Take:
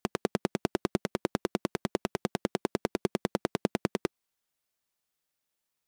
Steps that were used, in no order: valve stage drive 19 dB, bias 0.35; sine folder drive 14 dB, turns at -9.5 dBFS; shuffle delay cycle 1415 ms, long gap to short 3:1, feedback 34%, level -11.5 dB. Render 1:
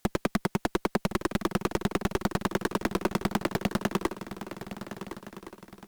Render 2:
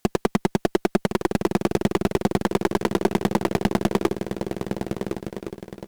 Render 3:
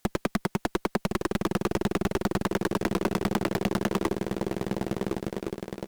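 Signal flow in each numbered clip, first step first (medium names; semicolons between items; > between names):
sine folder > valve stage > shuffle delay; valve stage > shuffle delay > sine folder; shuffle delay > sine folder > valve stage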